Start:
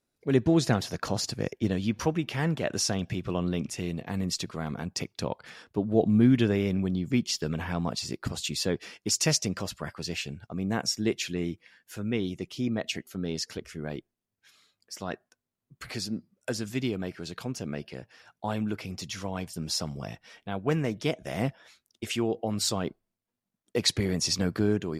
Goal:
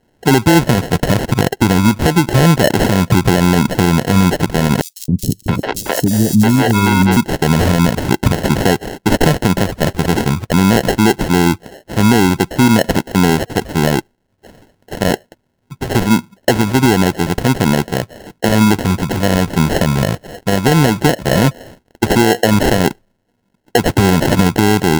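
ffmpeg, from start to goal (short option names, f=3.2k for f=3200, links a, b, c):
-filter_complex "[0:a]equalizer=f=4.6k:t=o:w=0.92:g=-14,acompressor=threshold=-29dB:ratio=4,acrusher=samples=37:mix=1:aa=0.000001,asettb=1/sr,asplit=3[a][b][c];[a]atrim=end=4.814[d];[b]atrim=start=4.81:end=7.17,asetpts=PTS-STARTPTS,afade=t=in:d=0.004:c=qsin,afade=t=out:st=2.356:d=0.004:c=qsin,acrossover=split=340|4600[e][f][g];[e]adelay=270[h];[f]adelay=670[i];[h][i][g]amix=inputs=3:normalize=0,atrim=end_sample=104076[j];[c]atrim=start=7.166[k];[d][j]acrossfade=d=0.004:c1=hsin:c2=qsin[l];[l][k]acrossfade=d=0.004:c1=qsin:c2=hsin,alimiter=level_in=24.5dB:limit=-1dB:release=50:level=0:latency=1,volume=-1dB"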